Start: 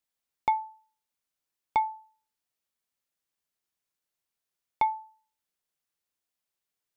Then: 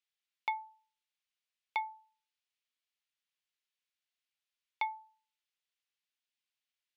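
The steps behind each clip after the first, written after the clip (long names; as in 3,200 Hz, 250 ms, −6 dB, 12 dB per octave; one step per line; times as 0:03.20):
resonant band-pass 2,900 Hz, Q 1.4
level +2.5 dB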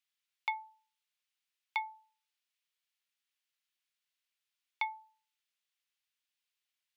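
high-pass filter 1,000 Hz 12 dB per octave
level +2.5 dB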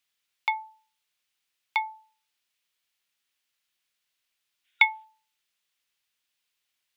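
gain on a spectral selection 0:04.65–0:05.04, 1,400–3,800 Hz +10 dB
level +8 dB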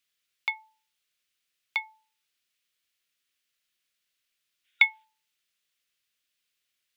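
parametric band 880 Hz −13.5 dB 0.36 octaves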